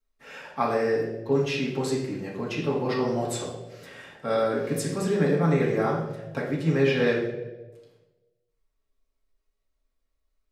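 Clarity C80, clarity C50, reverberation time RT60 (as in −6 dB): 7.0 dB, 4.0 dB, 1.2 s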